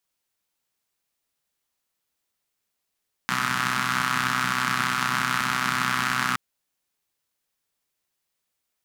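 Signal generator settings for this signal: four-cylinder engine model, steady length 3.07 s, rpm 3800, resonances 190/1300 Hz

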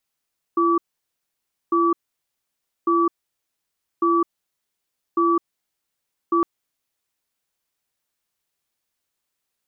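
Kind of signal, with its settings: cadence 339 Hz, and 1.15 kHz, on 0.21 s, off 0.94 s, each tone -18 dBFS 5.86 s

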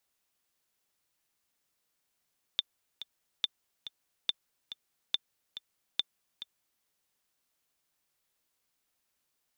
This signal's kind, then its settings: metronome 141 bpm, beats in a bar 2, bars 5, 3.56 kHz, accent 13 dB -14 dBFS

